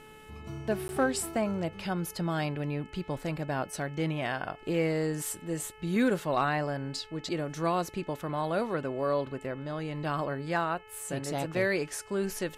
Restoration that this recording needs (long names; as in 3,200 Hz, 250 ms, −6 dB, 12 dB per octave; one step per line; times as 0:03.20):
clipped peaks rebuilt −17 dBFS
hum removal 432 Hz, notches 7
repair the gap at 0:00.88, 11 ms